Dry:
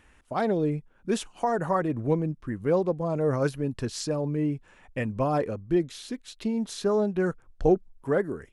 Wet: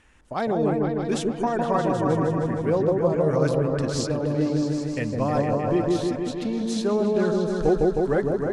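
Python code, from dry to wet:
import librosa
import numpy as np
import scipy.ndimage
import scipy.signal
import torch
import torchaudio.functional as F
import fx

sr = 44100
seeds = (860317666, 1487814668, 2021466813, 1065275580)

p1 = scipy.signal.sosfilt(scipy.signal.butter(2, 7800.0, 'lowpass', fs=sr, output='sos'), x)
p2 = fx.high_shelf(p1, sr, hz=4400.0, db=6.5)
y = p2 + fx.echo_opening(p2, sr, ms=156, hz=750, octaves=1, feedback_pct=70, wet_db=0, dry=0)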